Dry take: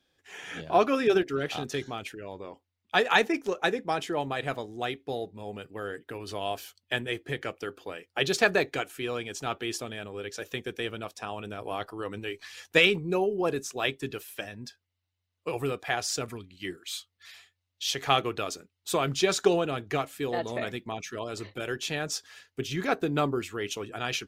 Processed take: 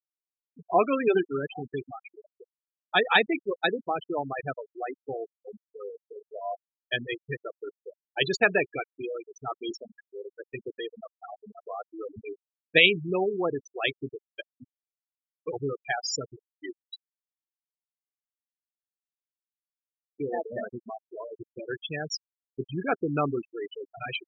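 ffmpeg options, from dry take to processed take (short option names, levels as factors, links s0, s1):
-filter_complex "[0:a]asettb=1/sr,asplit=3[s0][s1][s2];[s0]atrim=end=9.594[s3];[s1]atrim=start=9.59:end=10.08,asetpts=PTS-STARTPTS,afade=t=in:d=0.004:c=qsin,afade=t=out:st=0.486:d=0.004:c=qsin,asplit=2[s4][s5];[s5]adelay=26,volume=0.2[s6];[s4][s6]amix=inputs=2:normalize=0,atrim=end_sample=21609[s7];[s2]atrim=start=10.076[s8];[s3][s7]acrossfade=d=0.004:c1=hsin:c2=qsin[s9];[s9][s8]acrossfade=d=0.004:c1=qsin:c2=hsin,asplit=3[s10][s11][s12];[s10]atrim=end=16.96,asetpts=PTS-STARTPTS,afade=t=out:st=16.956:d=0.004:c=hsin[s13];[s11]atrim=start=16.96:end=20.06,asetpts=PTS-STARTPTS,volume=0[s14];[s12]atrim=start=20.06,asetpts=PTS-STARTPTS,afade=t=in:d=0.004:c=hsin[s15];[s13][s14][s15]concat=n=3:v=0:a=1,afftfilt=real='re*gte(hypot(re,im),0.0891)':imag='im*gte(hypot(re,im),0.0891)':win_size=1024:overlap=0.75,highshelf=f=3600:g=10"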